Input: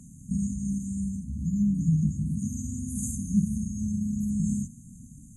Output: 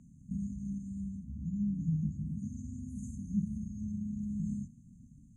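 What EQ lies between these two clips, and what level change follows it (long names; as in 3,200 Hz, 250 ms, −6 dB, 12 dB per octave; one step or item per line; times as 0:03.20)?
low-pass filter 3,700 Hz 12 dB per octave
−8.5 dB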